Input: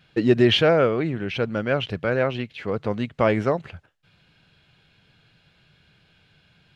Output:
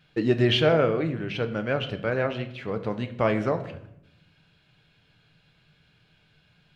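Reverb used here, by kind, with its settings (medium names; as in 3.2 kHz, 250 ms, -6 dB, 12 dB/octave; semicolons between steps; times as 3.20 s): simulated room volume 200 m³, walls mixed, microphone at 0.4 m; trim -4 dB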